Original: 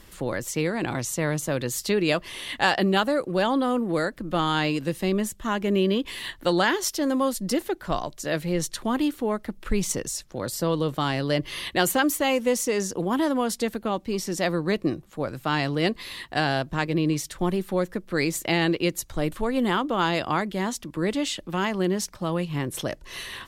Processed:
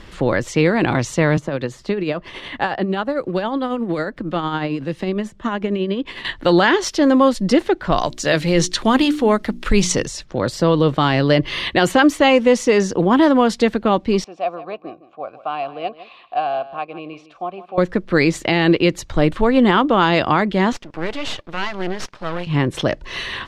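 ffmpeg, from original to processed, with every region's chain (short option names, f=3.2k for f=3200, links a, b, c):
-filter_complex "[0:a]asettb=1/sr,asplit=3[a][b][c];[a]atrim=end=1.374[d];[b]atrim=start=1.37:end=6.25,asetpts=PTS-STARTPTS,afade=t=in:d=0.004:c=qsin,afade=t=out:st=4.876:d=0.004:c=qsin,acrossover=split=110|1700[e][f][g];[e]acompressor=threshold=-52dB:ratio=4[h];[f]acompressor=threshold=-28dB:ratio=4[i];[g]acompressor=threshold=-43dB:ratio=4[j];[h][i][j]amix=inputs=3:normalize=0,tremolo=f=11:d=0.47[k];[c]atrim=start=6.246[l];[d][k]acrossfade=d=0.004:c1=hsin:c2=qsin[m];[m][l]acrossfade=d=0.004:c1=qsin:c2=hsin,asettb=1/sr,asplit=3[n][o][p];[n]atrim=end=7.984[q];[o]atrim=start=7.98:end=10.06,asetpts=PTS-STARTPTS,afade=t=in:d=0.004:c=qsin,afade=t=out:st=2.076:d=0.004:c=qsin,bandreject=f=60:t=h:w=6,bandreject=f=120:t=h:w=6,bandreject=f=180:t=h:w=6,bandreject=f=240:t=h:w=6,bandreject=f=300:t=h:w=6,bandreject=f=360:t=h:w=6,acrossover=split=7900[r][s];[s]acompressor=threshold=-49dB:ratio=4:attack=1:release=60[t];[r][t]amix=inputs=2:normalize=0,aemphasis=mode=production:type=75kf[u];[p]atrim=start=10.056[v];[q][u]acrossfade=d=0.004:c1=hsin:c2=qsin[w];[w][v]acrossfade=d=0.004:c1=qsin:c2=hsin,asettb=1/sr,asplit=3[x][y][z];[x]atrim=end=14.244[aa];[y]atrim=start=14.24:end=17.78,asetpts=PTS-STARTPTS,afade=t=in:d=0.004:c=qsin,afade=t=out:st=3.536:d=0.004:c=qsin,asplit=3[ab][ac][ad];[ab]bandpass=f=730:t=q:w=8,volume=0dB[ae];[ac]bandpass=f=1.09k:t=q:w=8,volume=-6dB[af];[ad]bandpass=f=2.44k:t=q:w=8,volume=-9dB[ag];[ae][af][ag]amix=inputs=3:normalize=0,aecho=1:1:159:0.168,atrim=end_sample=156114[ah];[z]atrim=start=17.776[ai];[aa][ah]acrossfade=d=0.004:c1=hsin:c2=qsin[aj];[aj][ai]acrossfade=d=0.004:c1=qsin:c2=hsin,asettb=1/sr,asplit=3[ak][al][am];[ak]atrim=end=20.724[an];[al]atrim=start=20.72:end=22.47,asetpts=PTS-STARTPTS,afade=t=in:d=0.004:c=qsin,afade=t=out:st=1.746:d=0.004:c=qsin,highpass=f=560:p=1,aeval=exprs='max(val(0),0)':c=same[ao];[am]atrim=start=22.466[ap];[an][ao]acrossfade=d=0.004:c1=hsin:c2=qsin[aq];[aq][ap]acrossfade=d=0.004:c1=qsin:c2=hsin,lowpass=4k,alimiter=level_in=13dB:limit=-1dB:release=50:level=0:latency=1,volume=-2.5dB"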